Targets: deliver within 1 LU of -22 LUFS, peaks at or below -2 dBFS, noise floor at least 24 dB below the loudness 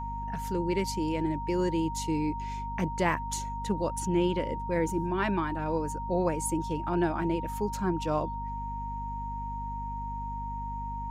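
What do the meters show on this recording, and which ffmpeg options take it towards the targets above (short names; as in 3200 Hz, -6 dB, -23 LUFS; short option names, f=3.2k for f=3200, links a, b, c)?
hum 50 Hz; harmonics up to 250 Hz; hum level -36 dBFS; steady tone 930 Hz; tone level -35 dBFS; loudness -31.0 LUFS; peak -11.5 dBFS; loudness target -22.0 LUFS
-> -af "bandreject=f=50:t=h:w=4,bandreject=f=100:t=h:w=4,bandreject=f=150:t=h:w=4,bandreject=f=200:t=h:w=4,bandreject=f=250:t=h:w=4"
-af "bandreject=f=930:w=30"
-af "volume=9dB"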